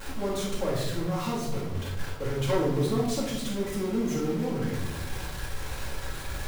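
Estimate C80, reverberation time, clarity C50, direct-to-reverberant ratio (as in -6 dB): 6.0 dB, 0.95 s, 2.5 dB, -6.0 dB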